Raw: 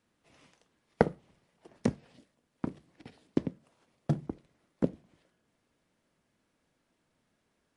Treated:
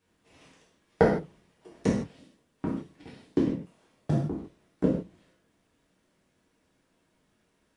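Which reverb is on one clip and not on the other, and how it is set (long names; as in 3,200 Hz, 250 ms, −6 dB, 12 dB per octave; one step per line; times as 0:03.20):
reverb whose tail is shaped and stops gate 190 ms falling, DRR −6 dB
level −2 dB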